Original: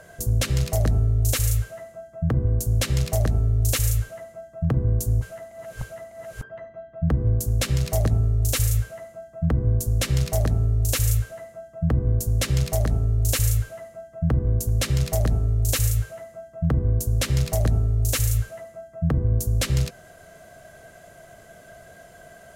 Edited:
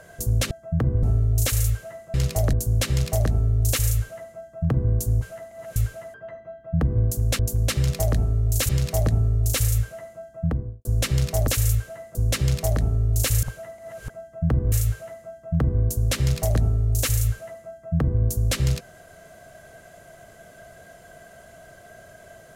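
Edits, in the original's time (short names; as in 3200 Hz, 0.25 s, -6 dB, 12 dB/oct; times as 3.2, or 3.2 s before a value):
0.51–0.9 swap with 2.01–2.53
5.76–6.43 swap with 13.52–13.9
9.34–9.84 studio fade out
10.47–10.9 cut
11.57–12.24 cut
14.52–15.82 move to 7.68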